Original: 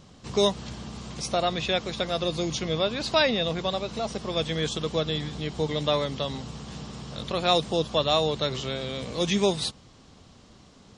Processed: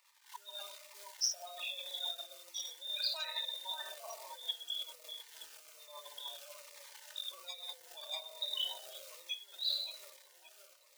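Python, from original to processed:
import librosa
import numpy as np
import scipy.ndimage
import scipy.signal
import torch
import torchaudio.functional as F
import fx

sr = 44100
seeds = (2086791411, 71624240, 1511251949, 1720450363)

p1 = fx.envelope_sharpen(x, sr, power=3.0)
p2 = np.clip(10.0 ** (17.5 / 20.0) * p1, -1.0, 1.0) / 10.0 ** (17.5 / 20.0)
p3 = p2 + fx.echo_split(p2, sr, split_hz=2000.0, low_ms=572, high_ms=92, feedback_pct=52, wet_db=-14.5, dry=0)
p4 = fx.room_shoebox(p3, sr, seeds[0], volume_m3=2400.0, walls='furnished', distance_m=4.7)
p5 = fx.spec_gate(p4, sr, threshold_db=-30, keep='strong')
p6 = fx.over_compress(p5, sr, threshold_db=-26.0, ratio=-1.0)
p7 = fx.quant_companded(p6, sr, bits=6)
p8 = scipy.signal.sosfilt(scipy.signal.ellip(4, 1.0, 80, 860.0, 'highpass', fs=sr, output='sos'), p7)
p9 = p8 + 0.45 * np.pad(p8, (int(3.3 * sr / 1000.0), 0))[:len(p8)]
p10 = fx.notch_cascade(p9, sr, direction='falling', hz=1.2)
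y = p10 * 10.0 ** (-4.0 / 20.0)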